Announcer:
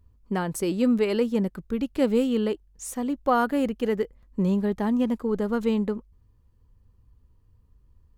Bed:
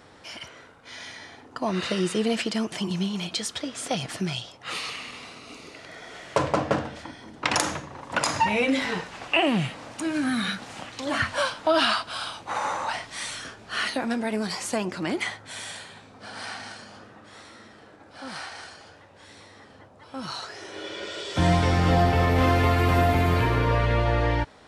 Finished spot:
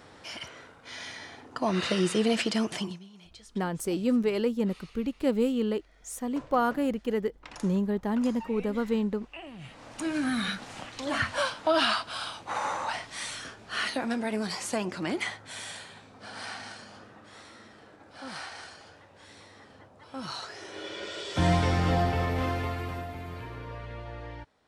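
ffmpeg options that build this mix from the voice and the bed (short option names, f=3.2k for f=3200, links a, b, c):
-filter_complex "[0:a]adelay=3250,volume=-3.5dB[a];[1:a]volume=18.5dB,afade=t=out:st=2.74:d=0.25:silence=0.0841395,afade=t=in:st=9.58:d=0.45:silence=0.112202,afade=t=out:st=21.55:d=1.52:silence=0.177828[b];[a][b]amix=inputs=2:normalize=0"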